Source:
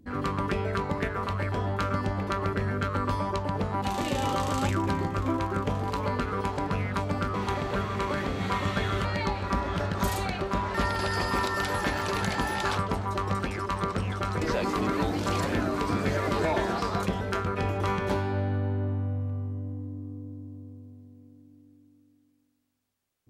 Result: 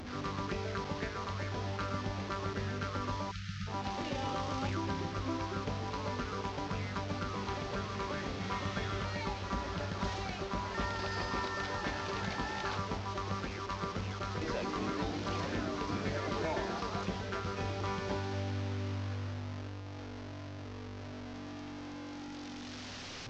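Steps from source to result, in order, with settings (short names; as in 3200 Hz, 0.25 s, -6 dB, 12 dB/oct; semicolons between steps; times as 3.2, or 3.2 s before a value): delta modulation 32 kbps, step -29.5 dBFS; spectral delete 3.31–3.67, 210–1200 Hz; gain -8.5 dB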